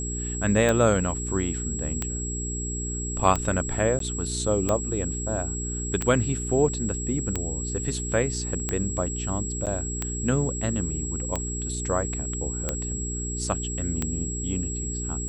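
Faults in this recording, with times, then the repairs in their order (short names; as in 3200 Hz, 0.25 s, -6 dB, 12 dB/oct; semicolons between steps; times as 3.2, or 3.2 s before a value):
hum 60 Hz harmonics 7 -32 dBFS
tick 45 rpm -11 dBFS
tone 7700 Hz -32 dBFS
3.99–4 gap 13 ms
9.66–9.67 gap 7.9 ms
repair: de-click; de-hum 60 Hz, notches 7; notch 7700 Hz, Q 30; interpolate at 3.99, 13 ms; interpolate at 9.66, 7.9 ms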